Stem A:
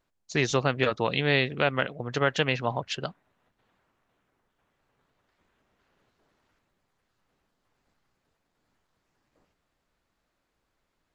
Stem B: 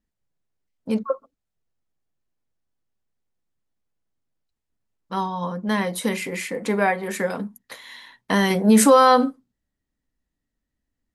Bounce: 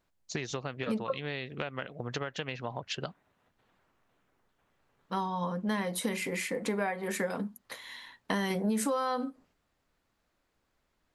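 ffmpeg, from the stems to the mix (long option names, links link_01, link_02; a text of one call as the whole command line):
ffmpeg -i stem1.wav -i stem2.wav -filter_complex "[0:a]acompressor=threshold=-31dB:ratio=10,volume=0dB[link_01];[1:a]volume=-4dB[link_02];[link_01][link_02]amix=inputs=2:normalize=0,acompressor=threshold=-28dB:ratio=6" out.wav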